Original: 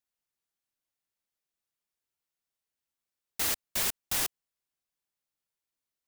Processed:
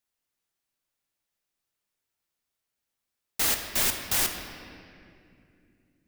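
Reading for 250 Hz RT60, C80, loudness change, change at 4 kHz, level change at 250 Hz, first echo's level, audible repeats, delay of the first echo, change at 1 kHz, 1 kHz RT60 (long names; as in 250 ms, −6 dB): 4.2 s, 6.5 dB, +4.5 dB, +5.0 dB, +6.5 dB, no echo audible, no echo audible, no echo audible, +5.0 dB, 2.2 s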